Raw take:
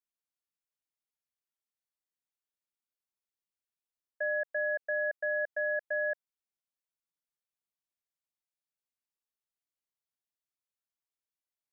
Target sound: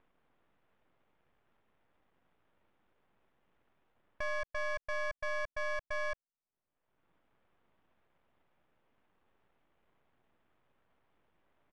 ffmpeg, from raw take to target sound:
-af "acompressor=mode=upward:threshold=0.02:ratio=2.5,aresample=8000,aresample=44100,aeval=exprs='max(val(0),0)':c=same,adynamicsmooth=sensitivity=5:basefreq=1500"

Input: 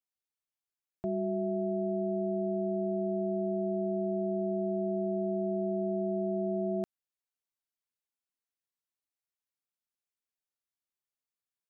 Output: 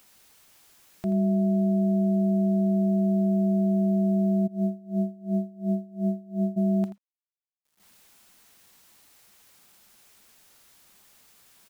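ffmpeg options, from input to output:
-filter_complex "[0:a]equalizer=f=200:t=o:w=0.33:g=12,equalizer=f=500:t=o:w=0.33:g=-7,equalizer=f=800:t=o:w=0.33:g=4,acompressor=mode=upward:threshold=0.0141:ratio=2.5,acrusher=bits=9:mix=0:aa=0.000001,aecho=1:1:82:0.237,asplit=3[s0][s1][s2];[s0]afade=t=out:st=4.46:d=0.02[s3];[s1]aeval=exprs='val(0)*pow(10,-25*(0.5-0.5*cos(2*PI*2.8*n/s))/20)':c=same,afade=t=in:st=4.46:d=0.02,afade=t=out:st=6.56:d=0.02[s4];[s2]afade=t=in:st=6.56:d=0.02[s5];[s3][s4][s5]amix=inputs=3:normalize=0"

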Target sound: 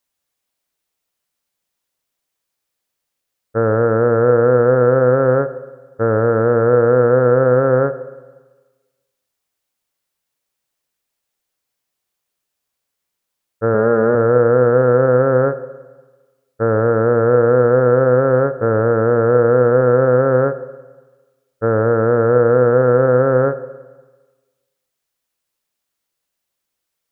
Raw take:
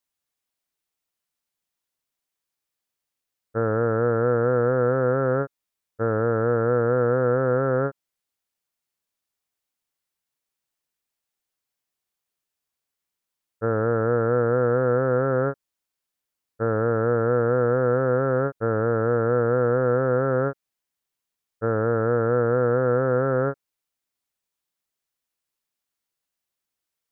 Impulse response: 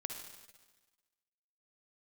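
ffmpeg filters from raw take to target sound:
-filter_complex "[0:a]asettb=1/sr,asplit=3[s0][s1][s2];[s0]atrim=end=13.744[s3];[s1]atrim=start=13.74:end=14.15,asetpts=PTS-STARTPTS,afade=t=in:d=0.004:c=qsin,afade=t=out:st=0.406:d=0.004:c=qsin,aecho=1:1:4.9:0.61,atrim=end_sample=18081[s4];[s2]atrim=start=14.146[s5];[s3][s4]acrossfade=d=0.004:c1=hsin:c2=qsin[s6];[s6][s5]acrossfade=d=0.004:c1=qsin:c2=hsin,asplit=2[s7][s8];[s8]equalizer=f=540:t=o:w=0.59:g=9[s9];[1:a]atrim=start_sample=2205[s10];[s9][s10]afir=irnorm=-1:irlink=0,volume=0.447[s11];[s7][s11]amix=inputs=2:normalize=0,volume=1.58"

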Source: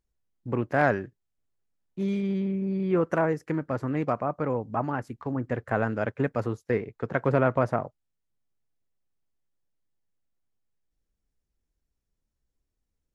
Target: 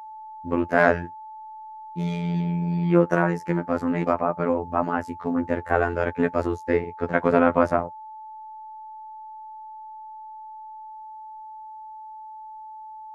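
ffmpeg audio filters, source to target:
-af "afftfilt=real='hypot(re,im)*cos(PI*b)':imag='0':win_size=2048:overlap=0.75,aeval=exprs='val(0)+0.00501*sin(2*PI*870*n/s)':c=same,volume=2.66"

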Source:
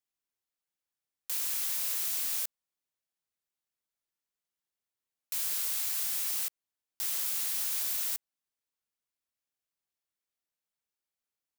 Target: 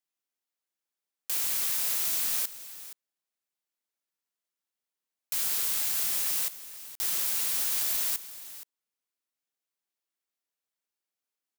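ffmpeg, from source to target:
-filter_complex "[0:a]highpass=f=190:w=0.5412,highpass=f=190:w=1.3066,asplit=2[s0][s1];[s1]acrusher=bits=4:mix=0:aa=0.000001,volume=0.501[s2];[s0][s2]amix=inputs=2:normalize=0,aecho=1:1:472:0.178"

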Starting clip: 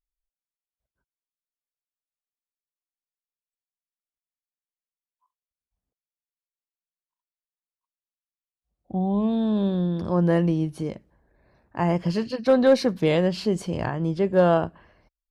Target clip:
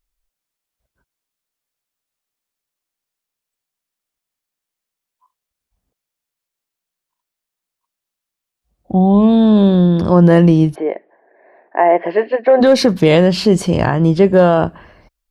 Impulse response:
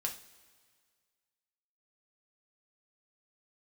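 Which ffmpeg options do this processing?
-filter_complex "[0:a]asplit=3[s0][s1][s2];[s0]afade=t=out:st=10.74:d=0.02[s3];[s1]highpass=f=360:w=0.5412,highpass=f=360:w=1.3066,equalizer=f=390:t=q:w=4:g=4,equalizer=f=700:t=q:w=4:g=9,equalizer=f=1300:t=q:w=4:g=-9,equalizer=f=1900:t=q:w=4:g=7,lowpass=f=2200:w=0.5412,lowpass=f=2200:w=1.3066,afade=t=in:st=10.74:d=0.02,afade=t=out:st=12.6:d=0.02[s4];[s2]afade=t=in:st=12.6:d=0.02[s5];[s3][s4][s5]amix=inputs=3:normalize=0,alimiter=level_in=5.01:limit=0.891:release=50:level=0:latency=1,volume=0.891"

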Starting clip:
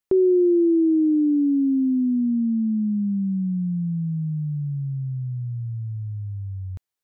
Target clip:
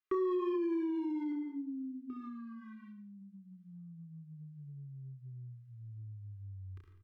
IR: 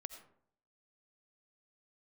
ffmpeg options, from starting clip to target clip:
-filter_complex "[0:a]asettb=1/sr,asplit=3[s0][s1][s2];[s0]atrim=end=1.324[s3];[s1]atrim=start=1.32:end=2.1,asetpts=PTS-STARTPTS,afade=t=in:d=0.004:c=qsin,afade=t=out:st=0.776:d=0.004:c=qsin,lowshelf=f=440:g=-9[s4];[s2]atrim=start=2.096[s5];[s3][s4]acrossfade=d=0.004:c1=hsin:c2=qsin[s6];[s6][s5]acrossfade=d=0.004:c1=qsin:c2=hsin,asoftclip=type=hard:threshold=0.106,aecho=1:1:30|64.5|104.2|149.8|202.3:0.631|0.398|0.251|0.158|0.1[s7];[1:a]atrim=start_sample=2205[s8];[s7][s8]afir=irnorm=-1:irlink=0,alimiter=limit=0.0891:level=0:latency=1,acompressor=threshold=0.0251:ratio=6,asuperstop=centerf=640:order=8:qfactor=1.1,bass=f=250:g=-15,treble=f=4000:g=-15,aecho=1:1:2.5:0.67,volume=1.12"

